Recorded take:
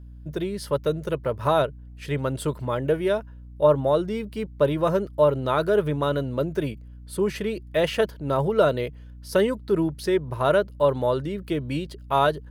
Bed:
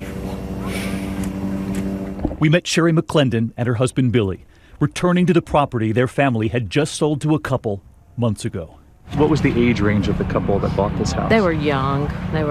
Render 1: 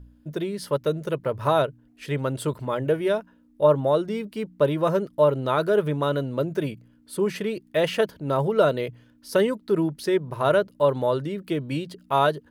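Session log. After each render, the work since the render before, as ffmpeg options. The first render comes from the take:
ffmpeg -i in.wav -af "bandreject=frequency=60:width_type=h:width=4,bandreject=frequency=120:width_type=h:width=4,bandreject=frequency=180:width_type=h:width=4" out.wav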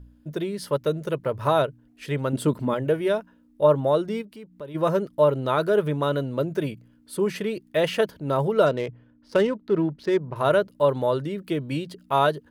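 ffmpeg -i in.wav -filter_complex "[0:a]asettb=1/sr,asplit=3[link_01][link_02][link_03];[link_01]atrim=end=2.334[link_04];[link_02]atrim=start=2.33:end=2.74,asetpts=PTS-STARTPTS,afade=type=in:duration=0.004:curve=qsin,afade=type=out:start_time=0.406:duration=0.004:curve=qsin,equalizer=frequency=240:width=1.5:gain=11[link_05];[link_03]atrim=start=2.736[link_06];[link_04][link_05]acrossfade=duration=0.004:curve1=hsin:curve2=qsin[link_07];[link_07][link_06]acrossfade=duration=0.004:curve1=qsin:curve2=hsin,asplit=3[link_08][link_09][link_10];[link_08]afade=type=out:start_time=4.21:duration=0.02[link_11];[link_09]acompressor=threshold=-48dB:ratio=2:attack=3.2:release=140:knee=1:detection=peak,afade=type=in:start_time=4.21:duration=0.02,afade=type=out:start_time=4.74:duration=0.02[link_12];[link_10]afade=type=in:start_time=4.74:duration=0.02[link_13];[link_11][link_12][link_13]amix=inputs=3:normalize=0,asettb=1/sr,asplit=3[link_14][link_15][link_16];[link_14]atrim=end=8.664[link_17];[link_15]atrim=start=8.66:end=10.36,asetpts=PTS-STARTPTS,afade=type=in:duration=0.004:curve=qsin,afade=type=out:start_time=1.696:duration=0.004:curve=qsin,adynamicsmooth=sensitivity=4.5:basefreq=1900[link_18];[link_16]atrim=start=10.356[link_19];[link_17][link_18]acrossfade=duration=0.004:curve1=hsin:curve2=qsin[link_20];[link_20][link_19]acrossfade=duration=0.004:curve1=qsin:curve2=hsin" out.wav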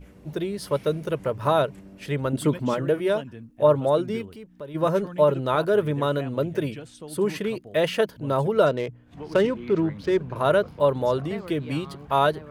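ffmpeg -i in.wav -i bed.wav -filter_complex "[1:a]volume=-22.5dB[link_01];[0:a][link_01]amix=inputs=2:normalize=0" out.wav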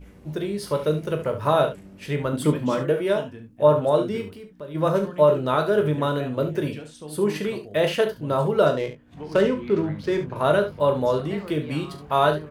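ffmpeg -i in.wav -filter_complex "[0:a]asplit=2[link_01][link_02];[link_02]adelay=20,volume=-9.5dB[link_03];[link_01][link_03]amix=inputs=2:normalize=0,aecho=1:1:39|71:0.316|0.282" out.wav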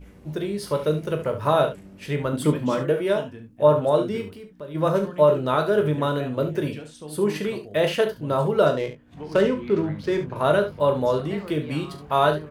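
ffmpeg -i in.wav -af anull out.wav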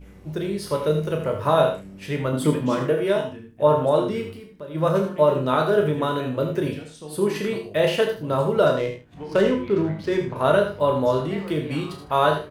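ffmpeg -i in.wav -filter_complex "[0:a]asplit=2[link_01][link_02];[link_02]adelay=31,volume=-8dB[link_03];[link_01][link_03]amix=inputs=2:normalize=0,aecho=1:1:82:0.316" out.wav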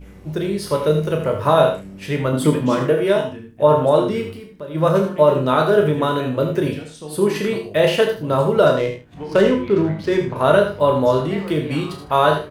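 ffmpeg -i in.wav -af "volume=4.5dB,alimiter=limit=-3dB:level=0:latency=1" out.wav

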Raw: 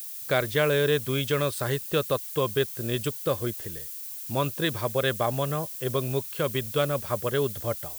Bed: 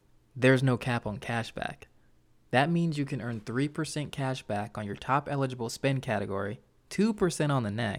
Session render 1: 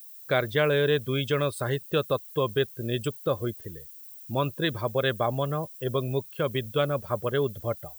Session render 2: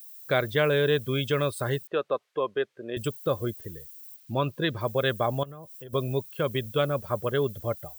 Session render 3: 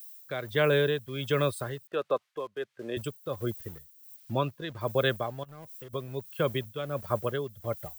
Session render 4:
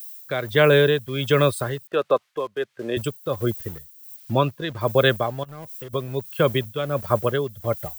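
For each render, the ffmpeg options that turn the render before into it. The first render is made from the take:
ffmpeg -i in.wav -af "afftdn=noise_reduction=14:noise_floor=-38" out.wav
ffmpeg -i in.wav -filter_complex "[0:a]asettb=1/sr,asplit=3[link_01][link_02][link_03];[link_01]atrim=end=1.874[link_04];[link_02]atrim=start=1.87:end=2.97,asetpts=PTS-STARTPTS,afade=type=in:duration=0.004:curve=qsin,afade=type=out:start_time=1.096:duration=0.004:curve=qsin,highpass=360,lowpass=2200[link_05];[link_03]atrim=start=2.966[link_06];[link_04][link_05]acrossfade=duration=0.004:curve1=hsin:curve2=qsin[link_07];[link_07][link_06]acrossfade=duration=0.004:curve1=qsin:curve2=hsin,asettb=1/sr,asplit=3[link_08][link_09][link_10];[link_08]atrim=end=4.164[link_11];[link_09]atrim=start=4.16:end=4.81,asetpts=PTS-STARTPTS,afade=type=in:duration=0.004:curve=qsin,afade=type=out:start_time=0.646:duration=0.004:curve=qsin,acrossover=split=5300[link_12][link_13];[link_13]acompressor=threshold=-52dB:ratio=4:attack=1:release=60[link_14];[link_12][link_14]amix=inputs=2:normalize=0[link_15];[link_10]atrim=start=4.806[link_16];[link_11][link_15]acrossfade=duration=0.004:curve1=hsin:curve2=qsin[link_17];[link_17][link_16]acrossfade=duration=0.004:curve1=qsin:curve2=hsin,asettb=1/sr,asplit=3[link_18][link_19][link_20];[link_18]atrim=end=5.434[link_21];[link_19]atrim=start=5.43:end=5.93,asetpts=PTS-STARTPTS,afade=type=in:duration=0.004:curve=qsin,afade=type=out:start_time=0.496:duration=0.004:curve=qsin,acompressor=threshold=-40dB:ratio=8:attack=3.2:release=140:knee=1:detection=peak[link_22];[link_20]atrim=start=5.926[link_23];[link_21][link_22]acrossfade=duration=0.004:curve1=hsin:curve2=qsin[link_24];[link_24][link_23]acrossfade=duration=0.004:curve1=qsin:curve2=hsin" out.wav
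ffmpeg -i in.wav -filter_complex "[0:a]tremolo=f=1.4:d=0.71,acrossover=split=220|690|1900[link_01][link_02][link_03][link_04];[link_02]aeval=exprs='val(0)*gte(abs(val(0)),0.00299)':channel_layout=same[link_05];[link_01][link_05][link_03][link_04]amix=inputs=4:normalize=0" out.wav
ffmpeg -i in.wav -af "volume=8.5dB" out.wav

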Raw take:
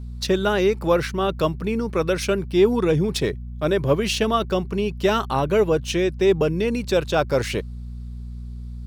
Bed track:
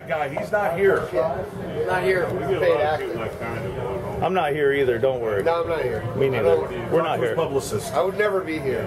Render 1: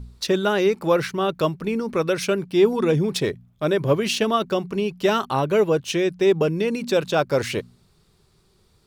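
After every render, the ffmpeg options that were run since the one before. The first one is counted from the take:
ffmpeg -i in.wav -af "bandreject=frequency=60:width_type=h:width=4,bandreject=frequency=120:width_type=h:width=4,bandreject=frequency=180:width_type=h:width=4,bandreject=frequency=240:width_type=h:width=4" out.wav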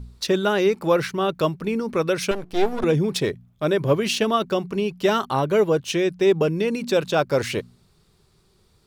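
ffmpeg -i in.wav -filter_complex "[0:a]asettb=1/sr,asplit=3[link_01][link_02][link_03];[link_01]atrim=end=2.314[link_04];[link_02]atrim=start=2.31:end=2.84,asetpts=PTS-STARTPTS,afade=type=in:duration=0.004:curve=qsin,afade=type=out:start_time=0.526:duration=0.004:curve=qsin,aeval=exprs='max(val(0),0)':channel_layout=same[link_05];[link_03]atrim=start=2.836[link_06];[link_04][link_05]acrossfade=duration=0.004:curve1=hsin:curve2=qsin[link_07];[link_07][link_06]acrossfade=duration=0.004:curve1=qsin:curve2=hsin,asettb=1/sr,asplit=3[link_08][link_09][link_10];[link_08]atrim=end=5.084[link_11];[link_09]atrim=start=5.08:end=5.8,asetpts=PTS-STARTPTS,afade=type=in:duration=0.004:curve=qsin,afade=type=out:start_time=0.716:duration=0.004:curve=qsin,bandreject=frequency=2600:width=12[link_12];[link_10]atrim=start=5.796[link_13];[link_11][link_12]acrossfade=duration=0.004:curve1=hsin:curve2=qsin[link_14];[link_14][link_13]acrossfade=duration=0.004:curve1=qsin:curve2=hsin" out.wav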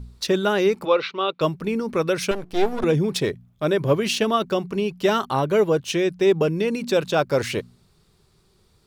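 ffmpeg -i in.wav -filter_complex "[0:a]asplit=3[link_01][link_02][link_03];[link_01]afade=type=out:start_time=0.84:duration=0.02[link_04];[link_02]highpass=420,equalizer=frequency=500:width_type=q:width=4:gain=3,equalizer=frequency=700:width_type=q:width=4:gain=-5,equalizer=frequency=1200:width_type=q:width=4:gain=4,equalizer=frequency=1700:width_type=q:width=4:gain=-9,equalizer=frequency=2500:width_type=q:width=4:gain=5,equalizer=frequency=3800:width_type=q:width=4:gain=7,lowpass=frequency=4300:width=0.5412,lowpass=frequency=4300:width=1.3066,afade=type=in:start_time=0.84:duration=0.02,afade=type=out:start_time=1.4:duration=0.02[link_05];[link_03]afade=type=in:start_time=1.4:duration=0.02[link_06];[link_04][link_05][link_06]amix=inputs=3:normalize=0" out.wav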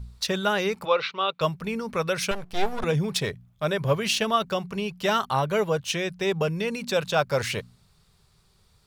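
ffmpeg -i in.wav -af "equalizer=frequency=320:width=1.6:gain=-13.5" out.wav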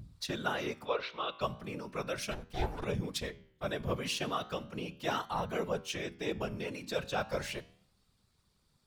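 ffmpeg -i in.wav -af "afftfilt=real='hypot(re,im)*cos(2*PI*random(0))':imag='hypot(re,im)*sin(2*PI*random(1))':win_size=512:overlap=0.75,flanger=delay=9.5:depth=8.8:regen=-87:speed=0.36:shape=triangular" out.wav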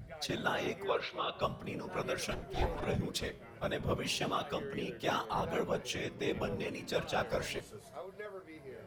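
ffmpeg -i in.wav -i bed.wav -filter_complex "[1:a]volume=-24.5dB[link_01];[0:a][link_01]amix=inputs=2:normalize=0" out.wav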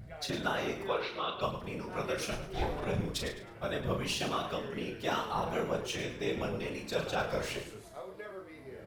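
ffmpeg -i in.wav -filter_complex "[0:a]asplit=2[link_01][link_02];[link_02]adelay=37,volume=-6dB[link_03];[link_01][link_03]amix=inputs=2:normalize=0,asplit=2[link_04][link_05];[link_05]asplit=3[link_06][link_07][link_08];[link_06]adelay=105,afreqshift=-59,volume=-10.5dB[link_09];[link_07]adelay=210,afreqshift=-118,volume=-20.7dB[link_10];[link_08]adelay=315,afreqshift=-177,volume=-30.8dB[link_11];[link_09][link_10][link_11]amix=inputs=3:normalize=0[link_12];[link_04][link_12]amix=inputs=2:normalize=0" out.wav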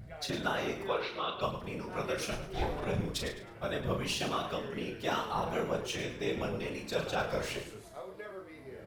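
ffmpeg -i in.wav -af anull out.wav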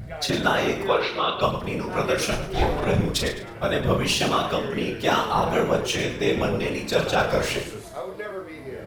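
ffmpeg -i in.wav -af "volume=11.5dB" out.wav

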